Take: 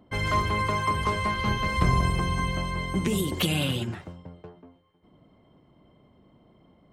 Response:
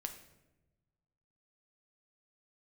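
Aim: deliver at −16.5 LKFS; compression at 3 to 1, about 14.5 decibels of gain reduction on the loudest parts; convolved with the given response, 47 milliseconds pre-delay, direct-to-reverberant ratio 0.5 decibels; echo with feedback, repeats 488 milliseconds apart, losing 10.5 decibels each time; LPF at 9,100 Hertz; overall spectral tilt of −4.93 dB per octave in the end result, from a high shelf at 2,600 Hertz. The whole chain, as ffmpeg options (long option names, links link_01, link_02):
-filter_complex "[0:a]lowpass=9100,highshelf=frequency=2600:gain=-5,acompressor=threshold=-38dB:ratio=3,aecho=1:1:488|976|1464:0.299|0.0896|0.0269,asplit=2[link_01][link_02];[1:a]atrim=start_sample=2205,adelay=47[link_03];[link_02][link_03]afir=irnorm=-1:irlink=0,volume=1.5dB[link_04];[link_01][link_04]amix=inputs=2:normalize=0,volume=19dB"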